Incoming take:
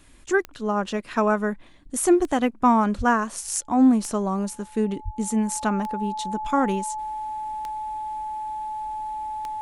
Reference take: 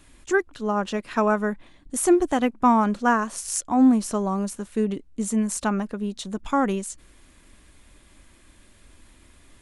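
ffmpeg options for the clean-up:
-filter_complex "[0:a]adeclick=t=4,bandreject=f=860:w=30,asplit=3[a][b][c];[a]afade=t=out:st=2.97:d=0.02[d];[b]highpass=f=140:w=0.5412,highpass=f=140:w=1.3066,afade=t=in:st=2.97:d=0.02,afade=t=out:st=3.09:d=0.02[e];[c]afade=t=in:st=3.09:d=0.02[f];[d][e][f]amix=inputs=3:normalize=0,asplit=3[g][h][i];[g]afade=t=out:st=5.04:d=0.02[j];[h]highpass=f=140:w=0.5412,highpass=f=140:w=1.3066,afade=t=in:st=5.04:d=0.02,afade=t=out:st=5.16:d=0.02[k];[i]afade=t=in:st=5.16:d=0.02[l];[j][k][l]amix=inputs=3:normalize=0"

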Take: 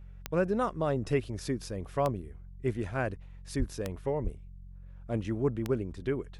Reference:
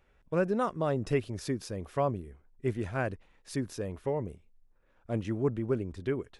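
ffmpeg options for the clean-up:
-filter_complex "[0:a]adeclick=t=4,bandreject=f=45.4:t=h:w=4,bandreject=f=90.8:t=h:w=4,bandreject=f=136.2:t=h:w=4,bandreject=f=181.6:t=h:w=4,asplit=3[a][b][c];[a]afade=t=out:st=3.58:d=0.02[d];[b]highpass=f=140:w=0.5412,highpass=f=140:w=1.3066,afade=t=in:st=3.58:d=0.02,afade=t=out:st=3.7:d=0.02[e];[c]afade=t=in:st=3.7:d=0.02[f];[d][e][f]amix=inputs=3:normalize=0,asplit=3[g][h][i];[g]afade=t=out:st=4.23:d=0.02[j];[h]highpass=f=140:w=0.5412,highpass=f=140:w=1.3066,afade=t=in:st=4.23:d=0.02,afade=t=out:st=4.35:d=0.02[k];[i]afade=t=in:st=4.35:d=0.02[l];[j][k][l]amix=inputs=3:normalize=0"

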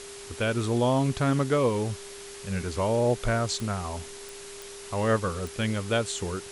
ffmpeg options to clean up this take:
-af "adeclick=t=4,bandreject=f=400:w=30,afwtdn=0.0079"

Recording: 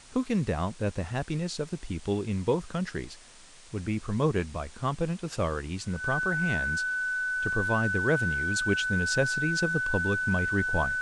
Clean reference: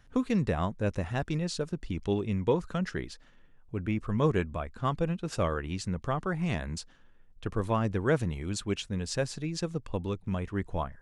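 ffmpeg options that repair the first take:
-af "bandreject=f=1.5k:w=30,afwtdn=0.0032,asetnsamples=n=441:p=0,asendcmd='8.56 volume volume -3.5dB',volume=0dB"

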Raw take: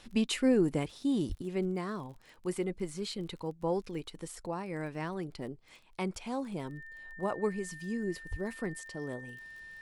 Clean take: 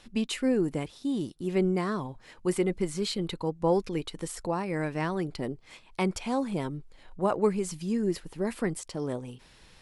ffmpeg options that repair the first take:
-filter_complex "[0:a]adeclick=t=4,bandreject=f=1.8k:w=30,asplit=3[a][b][c];[a]afade=t=out:st=1.28:d=0.02[d];[b]highpass=f=140:w=0.5412,highpass=f=140:w=1.3066,afade=t=in:st=1.28:d=0.02,afade=t=out:st=1.4:d=0.02[e];[c]afade=t=in:st=1.4:d=0.02[f];[d][e][f]amix=inputs=3:normalize=0,asplit=3[g][h][i];[g]afade=t=out:st=8.3:d=0.02[j];[h]highpass=f=140:w=0.5412,highpass=f=140:w=1.3066,afade=t=in:st=8.3:d=0.02,afade=t=out:st=8.42:d=0.02[k];[i]afade=t=in:st=8.42:d=0.02[l];[j][k][l]amix=inputs=3:normalize=0,asetnsamples=n=441:p=0,asendcmd='1.42 volume volume 7dB',volume=0dB"

